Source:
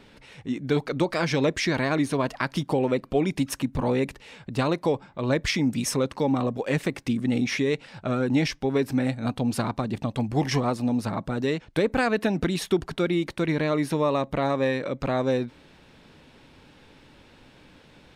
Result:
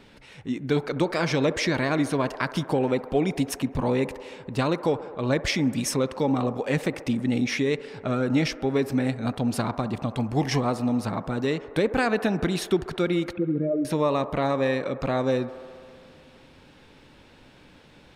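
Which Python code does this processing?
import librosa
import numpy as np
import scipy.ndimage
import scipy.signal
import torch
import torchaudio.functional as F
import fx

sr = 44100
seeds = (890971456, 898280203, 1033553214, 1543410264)

y = fx.spec_expand(x, sr, power=3.4, at=(13.33, 13.85))
y = fx.echo_wet_bandpass(y, sr, ms=67, feedback_pct=82, hz=760.0, wet_db=-14.5)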